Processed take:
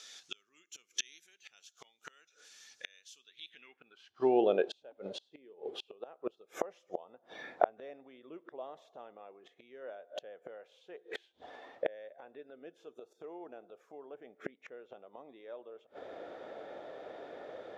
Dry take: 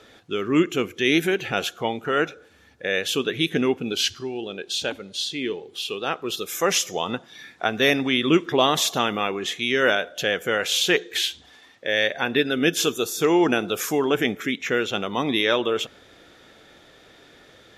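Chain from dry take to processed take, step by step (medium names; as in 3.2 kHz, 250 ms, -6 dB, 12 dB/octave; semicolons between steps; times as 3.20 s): inverted gate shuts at -19 dBFS, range -33 dB; band-pass sweep 6 kHz -> 610 Hz, 3.20–4.29 s; trim +12 dB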